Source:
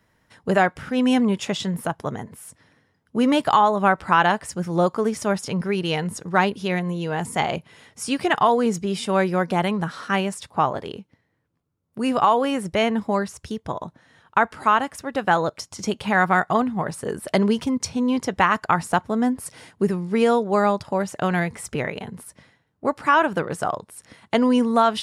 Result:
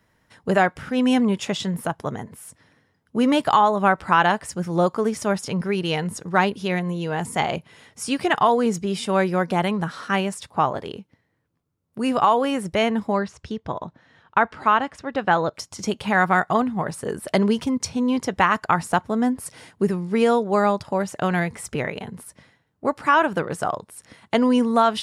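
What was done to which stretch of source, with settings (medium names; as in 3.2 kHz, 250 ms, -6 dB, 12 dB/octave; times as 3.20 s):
13.12–15.54 s: low-pass 4.8 kHz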